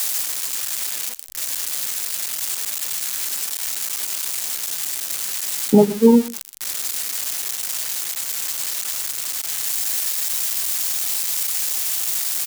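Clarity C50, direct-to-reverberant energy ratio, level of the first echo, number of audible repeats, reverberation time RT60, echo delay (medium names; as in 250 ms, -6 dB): no reverb, no reverb, -20.5 dB, 1, no reverb, 126 ms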